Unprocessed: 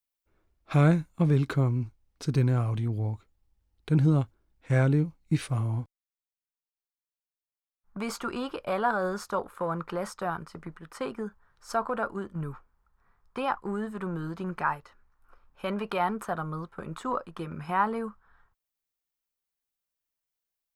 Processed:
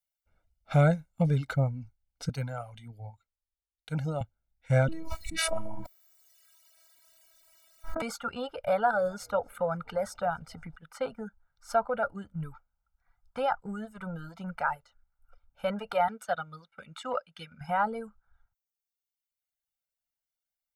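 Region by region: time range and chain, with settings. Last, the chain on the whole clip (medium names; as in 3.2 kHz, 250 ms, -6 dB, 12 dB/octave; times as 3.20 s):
2.29–4.21 s: bass shelf 400 Hz -9.5 dB + three bands expanded up and down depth 40%
4.88–8.02 s: bass shelf 73 Hz -10 dB + robot voice 324 Hz + level flattener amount 100%
8.64–10.76 s: upward compressor, threshold -33 dBFS + frequency-shifting echo 257 ms, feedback 60%, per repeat -72 Hz, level -22 dB
16.08–17.61 s: frequency weighting D + upward expansion, over -42 dBFS
whole clip: reverb removal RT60 1.2 s; comb 1.4 ms, depth 85%; dynamic bell 530 Hz, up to +6 dB, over -43 dBFS, Q 1.8; trim -4 dB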